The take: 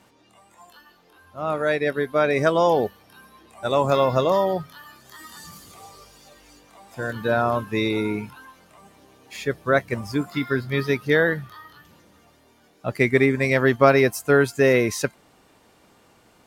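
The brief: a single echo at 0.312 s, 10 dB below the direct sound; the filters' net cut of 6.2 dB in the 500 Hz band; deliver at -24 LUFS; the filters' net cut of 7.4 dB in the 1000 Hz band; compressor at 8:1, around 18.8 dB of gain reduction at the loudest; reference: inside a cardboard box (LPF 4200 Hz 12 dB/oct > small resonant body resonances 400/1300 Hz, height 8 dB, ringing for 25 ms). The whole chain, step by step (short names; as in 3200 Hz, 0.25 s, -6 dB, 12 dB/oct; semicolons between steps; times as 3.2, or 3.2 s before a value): bell 500 Hz -5.5 dB; bell 1000 Hz -8.5 dB; compressor 8:1, threshold -36 dBFS; LPF 4200 Hz 12 dB/oct; echo 0.312 s -10 dB; small resonant body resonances 400/1300 Hz, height 8 dB, ringing for 25 ms; gain +14 dB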